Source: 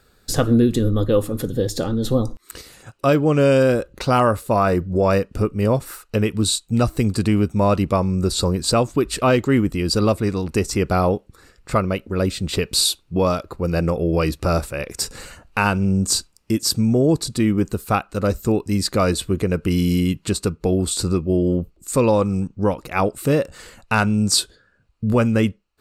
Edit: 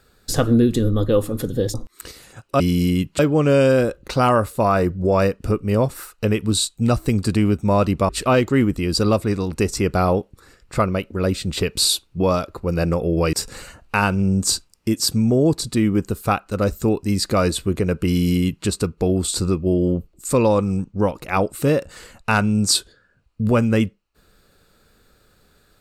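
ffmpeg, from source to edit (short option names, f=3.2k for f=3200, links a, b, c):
-filter_complex "[0:a]asplit=6[a][b][c][d][e][f];[a]atrim=end=1.742[g];[b]atrim=start=2.238:end=3.102[h];[c]atrim=start=19.698:end=20.292[i];[d]atrim=start=3.098:end=8.002[j];[e]atrim=start=9.048:end=14.292[k];[f]atrim=start=14.958[l];[g][h]acrossfade=d=0.004:c1=hsin:c2=hsin[m];[m][i]acrossfade=d=0.004:c1=hsin:c2=hsin[n];[n][j]acrossfade=d=0.004:c1=hsin:c2=hsin[o];[o][k]acrossfade=d=0.004:c1=hsin:c2=hsin[p];[p][l]acrossfade=d=0.004:c1=hsin:c2=hsin"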